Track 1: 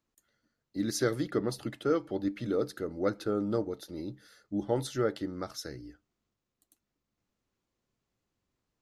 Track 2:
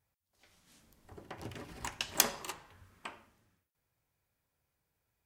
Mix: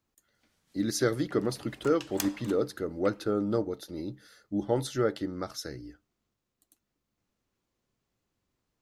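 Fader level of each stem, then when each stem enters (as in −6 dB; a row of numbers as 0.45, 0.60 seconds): +2.0, −7.0 decibels; 0.00, 0.00 seconds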